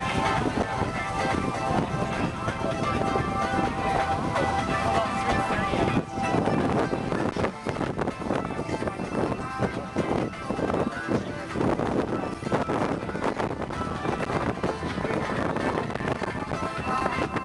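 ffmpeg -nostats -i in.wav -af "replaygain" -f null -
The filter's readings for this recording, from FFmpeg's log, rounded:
track_gain = +9.0 dB
track_peak = 0.194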